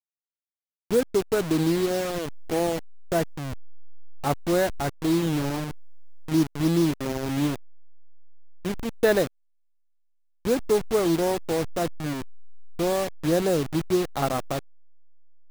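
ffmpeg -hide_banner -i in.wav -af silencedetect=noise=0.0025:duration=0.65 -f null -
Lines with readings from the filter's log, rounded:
silence_start: 0.00
silence_end: 0.91 | silence_duration: 0.91
silence_start: 9.27
silence_end: 10.45 | silence_duration: 1.18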